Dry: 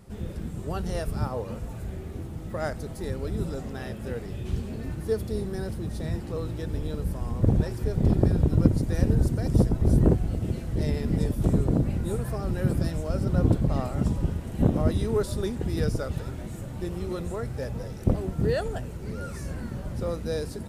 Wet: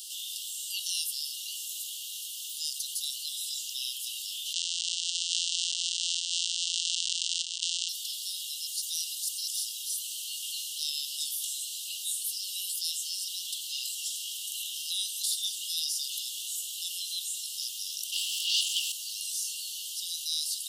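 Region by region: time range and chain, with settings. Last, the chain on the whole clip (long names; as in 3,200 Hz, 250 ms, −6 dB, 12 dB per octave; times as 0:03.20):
0:04.53–0:07.89: samples sorted by size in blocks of 256 samples + compressor whose output falls as the input rises −27 dBFS, ratio −0.5 + linear-phase brick-wall low-pass 8,800 Hz
0:18.12–0:18.92: lower of the sound and its delayed copy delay 0.38 ms + mid-hump overdrive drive 24 dB, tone 3,200 Hz, clips at −12 dBFS
whole clip: Chebyshev high-pass filter 2,800 Hz, order 10; envelope flattener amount 50%; level +8.5 dB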